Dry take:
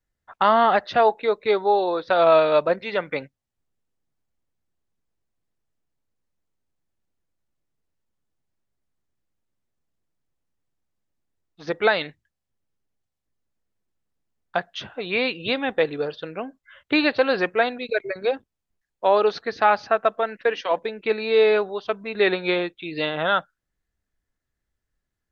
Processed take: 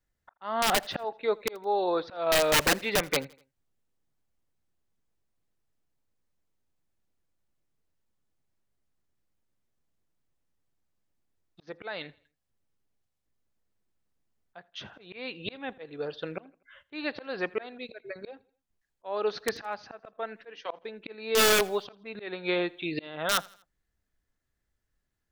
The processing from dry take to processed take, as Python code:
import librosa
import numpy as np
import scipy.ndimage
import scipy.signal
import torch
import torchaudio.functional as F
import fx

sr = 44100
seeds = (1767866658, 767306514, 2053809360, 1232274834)

y = fx.auto_swell(x, sr, attack_ms=617.0)
y = (np.mod(10.0 ** (16.5 / 20.0) * y + 1.0, 2.0) - 1.0) / 10.0 ** (16.5 / 20.0)
y = fx.echo_feedback(y, sr, ms=82, feedback_pct=45, wet_db=-24.0)